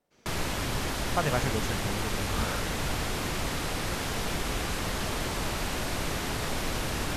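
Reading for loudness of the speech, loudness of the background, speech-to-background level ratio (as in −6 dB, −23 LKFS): −34.5 LKFS, −31.5 LKFS, −3.0 dB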